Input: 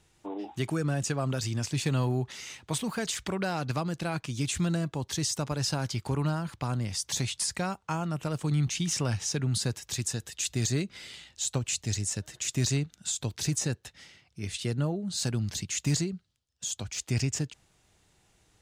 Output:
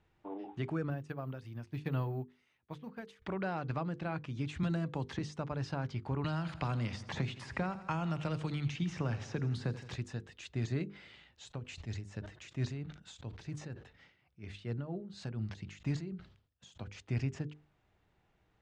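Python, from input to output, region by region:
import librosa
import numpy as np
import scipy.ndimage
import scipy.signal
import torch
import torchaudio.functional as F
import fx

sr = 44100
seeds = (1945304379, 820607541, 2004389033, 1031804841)

y = fx.chain(x, sr, fx.resample_bad(factor=3, down='filtered', up='zero_stuff'),
    fx.upward_expand(threshold_db=-34.0, expansion=2.5), at=(0.9, 3.22))
y = fx.chain(y, sr, fx.high_shelf(hz=5000.0, db=12.0),
    fx.band_squash(depth_pct=100), at=(4.63, 5.19))
y = fx.chain(y, sr, fx.echo_feedback(ms=83, feedback_pct=52, wet_db=-16.0),
    fx.band_squash(depth_pct=100), at=(6.24, 9.96))
y = fx.chain(y, sr, fx.tremolo(hz=4.3, depth=0.66),
    fx.sustainer(db_per_s=120.0), at=(11.48, 16.84))
y = scipy.signal.sosfilt(scipy.signal.butter(2, 2200.0, 'lowpass', fs=sr, output='sos'), y)
y = fx.hum_notches(y, sr, base_hz=50, count=10)
y = F.gain(torch.from_numpy(y), -5.0).numpy()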